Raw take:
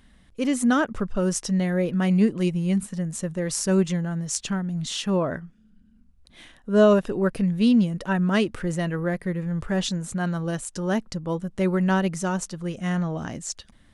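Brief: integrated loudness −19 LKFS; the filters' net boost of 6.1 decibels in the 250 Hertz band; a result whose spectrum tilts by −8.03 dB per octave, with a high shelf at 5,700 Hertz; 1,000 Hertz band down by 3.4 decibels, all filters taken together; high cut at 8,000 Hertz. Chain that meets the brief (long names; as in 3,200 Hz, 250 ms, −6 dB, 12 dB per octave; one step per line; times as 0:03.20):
low-pass filter 8,000 Hz
parametric band 250 Hz +8.5 dB
parametric band 1,000 Hz −5 dB
high-shelf EQ 5,700 Hz −3 dB
level +1 dB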